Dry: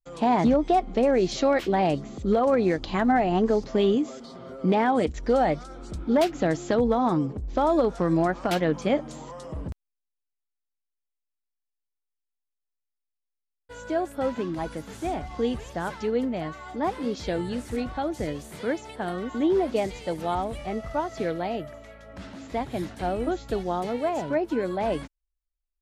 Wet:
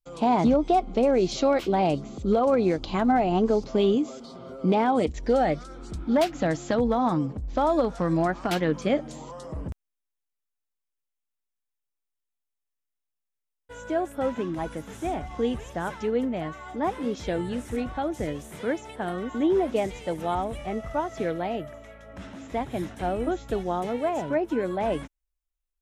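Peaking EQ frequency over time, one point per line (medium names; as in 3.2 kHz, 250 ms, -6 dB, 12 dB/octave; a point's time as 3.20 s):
peaking EQ -10 dB 0.27 oct
4.96 s 1.8 kHz
6.22 s 390 Hz
8.18 s 390 Hz
9.07 s 1.1 kHz
9.71 s 4.5 kHz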